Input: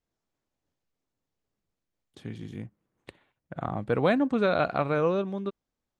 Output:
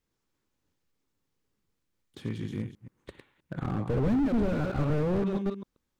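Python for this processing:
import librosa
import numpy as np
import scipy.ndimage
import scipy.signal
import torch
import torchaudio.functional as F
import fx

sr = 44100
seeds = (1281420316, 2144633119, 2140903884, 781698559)

y = fx.reverse_delay(x, sr, ms=131, wet_db=-10.0)
y = fx.peak_eq(y, sr, hz=670.0, db=-10.0, octaves=0.39)
y = fx.slew_limit(y, sr, full_power_hz=11.0)
y = y * 10.0 ** (4.5 / 20.0)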